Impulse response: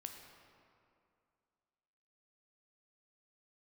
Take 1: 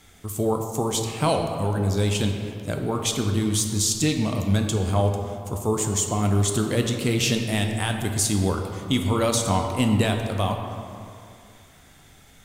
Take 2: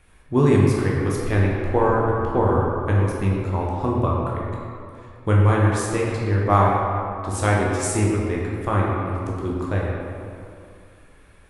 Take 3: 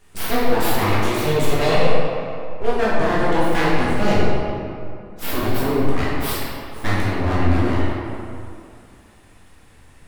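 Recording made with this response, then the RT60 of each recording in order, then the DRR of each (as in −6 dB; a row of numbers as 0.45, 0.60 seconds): 1; 2.4, 2.5, 2.5 seconds; 3.5, −4.0, −8.0 decibels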